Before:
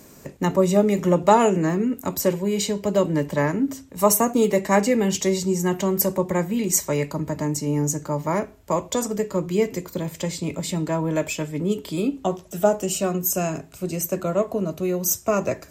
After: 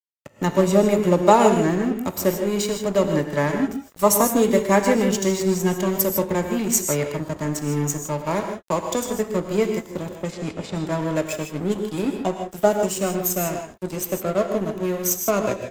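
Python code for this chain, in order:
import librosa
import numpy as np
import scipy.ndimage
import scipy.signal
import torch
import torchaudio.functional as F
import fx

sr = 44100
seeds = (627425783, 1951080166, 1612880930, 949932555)

y = np.sign(x) * np.maximum(np.abs(x) - 10.0 ** (-32.0 / 20.0), 0.0)
y = fx.env_lowpass(y, sr, base_hz=700.0, full_db=-24.5, at=(10.15, 11.27))
y = fx.rev_gated(y, sr, seeds[0], gate_ms=180, shape='rising', drr_db=5.5)
y = y * 10.0 ** (1.5 / 20.0)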